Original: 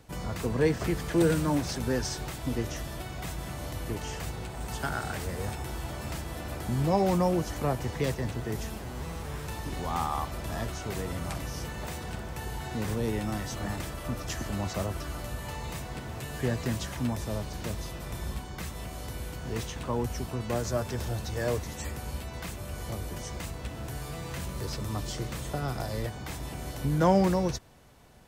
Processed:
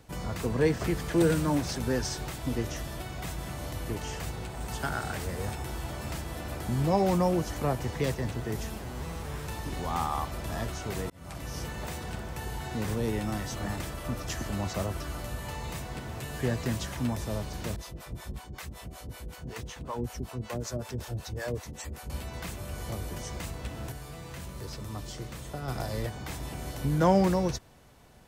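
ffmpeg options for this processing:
-filter_complex "[0:a]asettb=1/sr,asplit=3[s0][s1][s2];[s0]atrim=end=17.764[s3];[s1]atrim=start=17.76:end=22.1,asetpts=PTS-STARTPTS,afade=t=in:d=0.004:c=qsin,afade=t=out:st=4.336:d=0.004:c=qsin,acrossover=split=510[s4][s5];[s4]aeval=exprs='val(0)*(1-1/2+1/2*cos(2*PI*5.3*n/s))':c=same[s6];[s5]aeval=exprs='val(0)*(1-1/2-1/2*cos(2*PI*5.3*n/s))':c=same[s7];[s6][s7]amix=inputs=2:normalize=0[s8];[s2]atrim=start=22.096[s9];[s3][s8]acrossfade=d=0.004:c1=hsin:c2=qsin[s10];[s10][s9]acrossfade=d=0.004:c1=qsin:c2=hsin,asplit=4[s11][s12][s13][s14];[s11]atrim=end=11.1,asetpts=PTS-STARTPTS,afade=t=out:st=11.096:d=0.004:c=hsin[s15];[s12]atrim=start=11.1:end=23.922,asetpts=PTS-STARTPTS,afade=t=in:d=0.47[s16];[s13]atrim=start=23.918:end=25.682,asetpts=PTS-STARTPTS,volume=0.562[s17];[s14]atrim=start=25.678[s18];[s15][s16]concat=n=2:v=0:a=1[s19];[s19][s17]acrossfade=d=0.004:c1=hsin:c2=hsin[s20];[s20][s18]acrossfade=d=0.004:c1=hsin:c2=hsin"

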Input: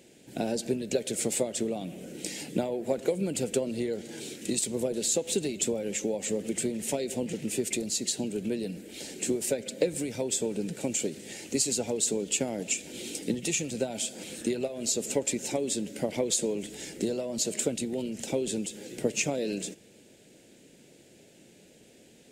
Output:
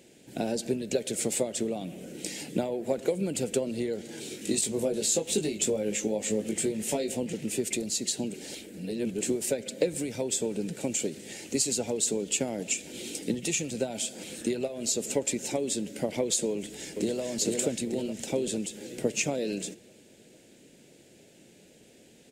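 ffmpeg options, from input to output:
-filter_complex "[0:a]asettb=1/sr,asplit=3[s0][s1][s2];[s0]atrim=end=4.294[s3];[s1]atrim=start=4.29:end=7.17,asetpts=PTS-STARTPTS,afade=t=in:d=0.004:c=qsin,afade=t=out:st=2.876:d=0.004:c=qsin,asplit=2[s4][s5];[s5]adelay=19,volume=0.596[s6];[s4][s6]amix=inputs=2:normalize=0,atrim=end_sample=127008[s7];[s2]atrim=start=7.166[s8];[s3][s7]acrossfade=d=0.004:c1=hsin:c2=qsin[s9];[s9][s8]acrossfade=d=0.004:c1=qsin:c2=hsin,asplit=2[s10][s11];[s11]afade=t=in:st=16.51:d=0.01,afade=t=out:st=17.22:d=0.01,aecho=0:1:450|900|1350|1800|2250|2700|3150|3600:0.749894|0.412442|0.226843|0.124764|0.06862|0.037741|0.0207576|0.0114167[s12];[s10][s12]amix=inputs=2:normalize=0,asplit=3[s13][s14][s15];[s13]atrim=end=8.342[s16];[s14]atrim=start=8.338:end=9.212,asetpts=PTS-STARTPTS,areverse[s17];[s15]atrim=start=9.208[s18];[s16][s17]acrossfade=d=0.004:c1=hsin:c2=hsin[s19];[s19][s18]acrossfade=d=0.004:c1=hsin:c2=hsin"

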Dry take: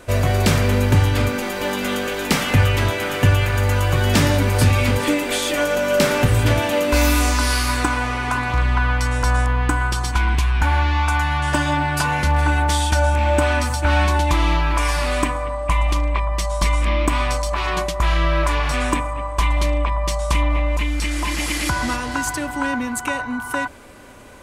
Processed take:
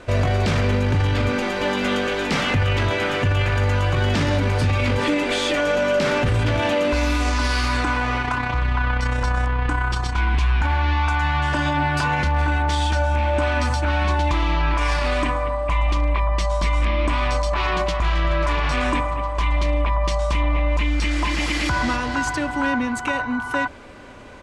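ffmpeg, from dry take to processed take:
-filter_complex "[0:a]asettb=1/sr,asplit=3[s0][s1][s2];[s0]atrim=end=8.224[s3];[s1]atrim=start=8.22:end=10.19,asetpts=PTS-STARTPTS,afade=t=in:d=0.004:c=qsin,afade=t=out:st=1.966:d=0.004:c=qsin,tremolo=f=32:d=0.519[s4];[s2]atrim=start=10.186[s5];[s3][s4]acrossfade=d=0.004:c1=hsin:c2=qsin[s6];[s6][s5]acrossfade=d=0.004:c1=qsin:c2=hsin,asplit=2[s7][s8];[s8]afade=t=in:st=17.59:d=0.01,afade=t=out:st=18.05:d=0.01,aecho=0:1:270|540|810|1080|1350|1620|1890|2160|2430|2700:0.334965|0.234476|0.164133|0.114893|0.0804252|0.0562976|0.0394083|0.0275858|0.0193101|0.0135171[s9];[s7][s9]amix=inputs=2:normalize=0,lowpass=5000,alimiter=limit=0.2:level=0:latency=1:release=12,volume=1.19"

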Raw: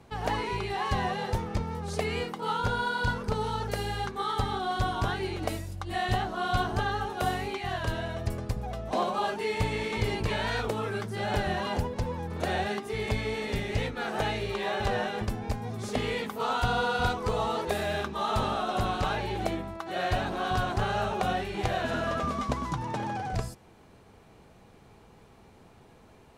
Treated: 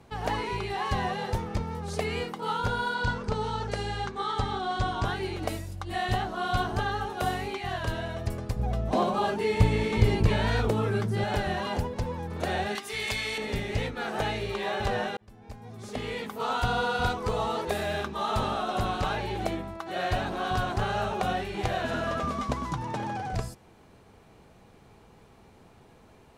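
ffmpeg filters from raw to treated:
-filter_complex "[0:a]asettb=1/sr,asplit=3[s0][s1][s2];[s0]atrim=end=2.944[s3];[s1]atrim=start=2.94:end=5.05,asetpts=PTS-STARTPTS,afade=t=in:d=0.004:c=qsin,afade=t=out:st=2.106:d=0.004:c=qsin,lowpass=f=8400:w=0.5412,lowpass=f=8400:w=1.3066[s4];[s2]atrim=start=5.046[s5];[s3][s4]acrossfade=d=0.004:c1=hsin:c2=qsin[s6];[s6][s5]acrossfade=d=0.004:c1=qsin:c2=hsin,asettb=1/sr,asplit=3[s7][s8][s9];[s7]atrim=end=8.594[s10];[s8]atrim=start=8.59:end=11.24,asetpts=PTS-STARTPTS,afade=t=in:d=0.004:c=qsin,afade=t=out:st=2.646:d=0.004:c=qsin,lowshelf=f=360:g=9.5[s11];[s9]atrim=start=11.236[s12];[s10][s11]acrossfade=d=0.004:c1=hsin:c2=qsin[s13];[s13][s12]acrossfade=d=0.004:c1=qsin:c2=hsin,asettb=1/sr,asplit=3[s14][s15][s16];[s14]atrim=end=12.754[s17];[s15]atrim=start=12.75:end=13.38,asetpts=PTS-STARTPTS,afade=t=in:d=0.004:c=qsin,afade=t=out:st=0.626:d=0.004:c=qsin,tiltshelf=f=1100:g=-9.5[s18];[s16]atrim=start=13.376[s19];[s17][s18]acrossfade=d=0.004:c1=hsin:c2=qsin[s20];[s20][s19]acrossfade=d=0.004:c1=qsin:c2=hsin,asplit=2[s21][s22];[s21]atrim=end=15.17,asetpts=PTS-STARTPTS,afade=t=out:st=15.166:d=0.004:c=hsin[s23];[s22]atrim=start=15.17,asetpts=PTS-STARTPTS,afade=t=in:d=1.37[s24];[s23][s24]concat=n=2:v=0:a=1"

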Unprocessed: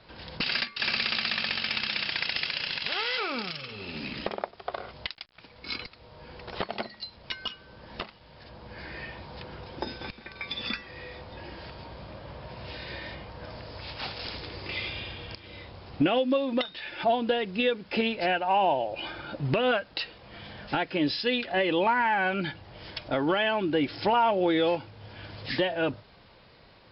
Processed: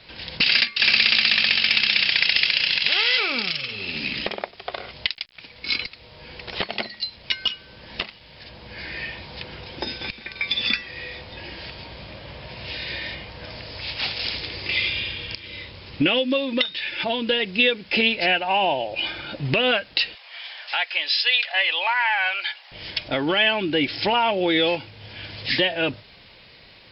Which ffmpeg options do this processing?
-filter_complex "[0:a]asettb=1/sr,asplit=3[s0][s1][s2];[s0]atrim=end=14.784[s3];[s1]atrim=start=14.78:end=17.4,asetpts=PTS-STARTPTS,afade=t=in:d=0.004:c=qsin,afade=t=out:st=2.616:d=0.004:c=qsin,bandreject=f=730:w=5.3[s4];[s2]atrim=start=17.396[s5];[s3][s4]acrossfade=d=0.004:c1=hsin:c2=qsin[s6];[s6][s5]acrossfade=d=0.004:c1=qsin:c2=hsin,asettb=1/sr,asplit=3[s7][s8][s9];[s7]atrim=end=20.154[s10];[s8]atrim=start=20.15:end=22.72,asetpts=PTS-STARTPTS,afade=t=in:d=0.004:c=qsin,afade=t=out:st=2.566:d=0.004:c=qsin,highpass=f=740:w=0.5412,highpass=f=740:w=1.3066[s11];[s9]atrim=start=22.716[s12];[s10][s11]acrossfade=d=0.004:c1=hsin:c2=qsin[s13];[s13][s12]acrossfade=d=0.004:c1=qsin:c2=hsin,highshelf=f=1700:t=q:w=1.5:g=7,volume=1.41"

